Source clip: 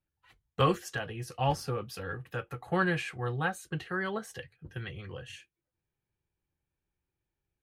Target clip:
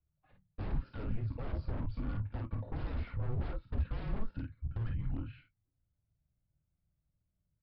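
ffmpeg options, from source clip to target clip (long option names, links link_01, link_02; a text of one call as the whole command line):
ffmpeg -i in.wav -af "alimiter=level_in=1dB:limit=-24dB:level=0:latency=1:release=57,volume=-1dB,aecho=1:1:26|50:0.299|0.562,aresample=11025,aeval=exprs='0.0188*(abs(mod(val(0)/0.0188+3,4)-2)-1)':channel_layout=same,aresample=44100,bandpass=frequency=210:width_type=q:width=2.5:csg=0,afreqshift=-230,volume=15.5dB" out.wav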